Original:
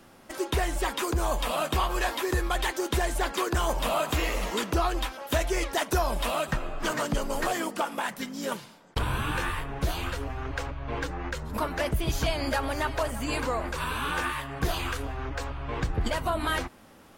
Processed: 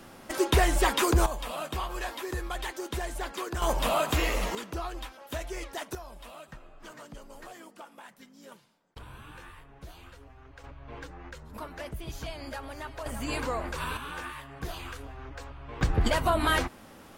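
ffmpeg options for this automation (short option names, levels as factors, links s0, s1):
-af "asetnsamples=n=441:p=0,asendcmd='1.26 volume volume -7dB;3.62 volume volume 0.5dB;4.55 volume volume -9.5dB;5.95 volume volume -18dB;10.64 volume volume -11dB;13.06 volume volume -2.5dB;13.97 volume volume -9dB;15.81 volume volume 3dB',volume=1.68"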